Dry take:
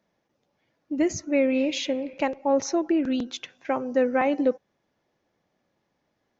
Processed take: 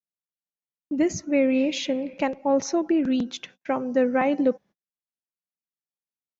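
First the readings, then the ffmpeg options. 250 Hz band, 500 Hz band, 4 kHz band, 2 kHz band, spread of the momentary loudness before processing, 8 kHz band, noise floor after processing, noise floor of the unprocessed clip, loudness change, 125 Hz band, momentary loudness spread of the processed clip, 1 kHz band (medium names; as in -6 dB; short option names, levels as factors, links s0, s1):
+2.0 dB, +0.5 dB, 0.0 dB, 0.0 dB, 8 LU, no reading, under -85 dBFS, -76 dBFS, +1.0 dB, +4.0 dB, 8 LU, 0.0 dB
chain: -af "agate=range=0.01:threshold=0.00447:ratio=16:detection=peak,equalizer=f=190:t=o:w=0.56:g=9"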